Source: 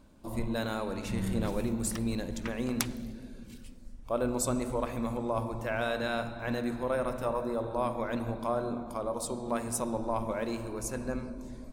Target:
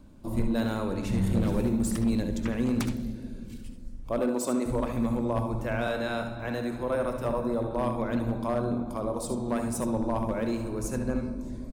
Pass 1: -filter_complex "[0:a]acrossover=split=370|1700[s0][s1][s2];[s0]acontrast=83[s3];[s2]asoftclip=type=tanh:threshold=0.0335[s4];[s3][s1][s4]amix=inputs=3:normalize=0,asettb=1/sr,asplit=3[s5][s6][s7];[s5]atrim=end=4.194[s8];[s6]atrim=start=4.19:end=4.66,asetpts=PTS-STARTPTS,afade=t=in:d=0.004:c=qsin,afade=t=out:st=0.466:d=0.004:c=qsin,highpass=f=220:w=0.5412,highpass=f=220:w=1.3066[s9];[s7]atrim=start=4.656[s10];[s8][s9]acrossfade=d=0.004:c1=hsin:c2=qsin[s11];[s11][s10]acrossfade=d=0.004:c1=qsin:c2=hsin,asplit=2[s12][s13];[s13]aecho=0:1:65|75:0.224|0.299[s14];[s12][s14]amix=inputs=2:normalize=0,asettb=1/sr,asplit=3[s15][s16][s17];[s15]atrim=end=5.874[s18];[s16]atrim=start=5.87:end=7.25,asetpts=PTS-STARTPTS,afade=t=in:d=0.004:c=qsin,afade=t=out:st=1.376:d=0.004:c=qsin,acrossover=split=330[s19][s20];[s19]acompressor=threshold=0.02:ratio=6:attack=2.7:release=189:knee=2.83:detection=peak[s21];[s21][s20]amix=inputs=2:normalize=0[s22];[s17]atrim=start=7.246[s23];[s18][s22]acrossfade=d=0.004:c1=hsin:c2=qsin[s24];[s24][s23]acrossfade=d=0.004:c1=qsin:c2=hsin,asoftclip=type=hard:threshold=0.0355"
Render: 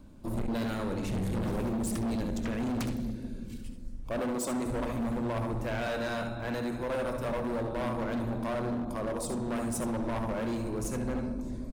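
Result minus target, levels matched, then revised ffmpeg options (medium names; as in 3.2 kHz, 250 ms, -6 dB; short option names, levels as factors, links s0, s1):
hard clipper: distortion +14 dB
-filter_complex "[0:a]acrossover=split=370|1700[s0][s1][s2];[s0]acontrast=83[s3];[s2]asoftclip=type=tanh:threshold=0.0335[s4];[s3][s1][s4]amix=inputs=3:normalize=0,asettb=1/sr,asplit=3[s5][s6][s7];[s5]atrim=end=4.194[s8];[s6]atrim=start=4.19:end=4.66,asetpts=PTS-STARTPTS,afade=t=in:d=0.004:c=qsin,afade=t=out:st=0.466:d=0.004:c=qsin,highpass=f=220:w=0.5412,highpass=f=220:w=1.3066[s9];[s7]atrim=start=4.656[s10];[s8][s9]acrossfade=d=0.004:c1=hsin:c2=qsin[s11];[s11][s10]acrossfade=d=0.004:c1=qsin:c2=hsin,asplit=2[s12][s13];[s13]aecho=0:1:65|75:0.224|0.299[s14];[s12][s14]amix=inputs=2:normalize=0,asettb=1/sr,asplit=3[s15][s16][s17];[s15]atrim=end=5.874[s18];[s16]atrim=start=5.87:end=7.25,asetpts=PTS-STARTPTS,afade=t=in:d=0.004:c=qsin,afade=t=out:st=1.376:d=0.004:c=qsin,acrossover=split=330[s19][s20];[s19]acompressor=threshold=0.02:ratio=6:attack=2.7:release=189:knee=2.83:detection=peak[s21];[s21][s20]amix=inputs=2:normalize=0[s22];[s17]atrim=start=7.246[s23];[s18][s22]acrossfade=d=0.004:c1=hsin:c2=qsin[s24];[s24][s23]acrossfade=d=0.004:c1=qsin:c2=hsin,asoftclip=type=hard:threshold=0.106"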